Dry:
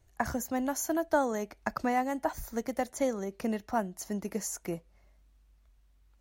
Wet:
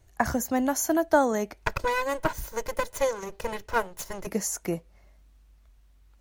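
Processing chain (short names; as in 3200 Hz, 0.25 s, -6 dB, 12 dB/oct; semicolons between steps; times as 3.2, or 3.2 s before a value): 1.57–4.27 minimum comb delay 2 ms; gain +6 dB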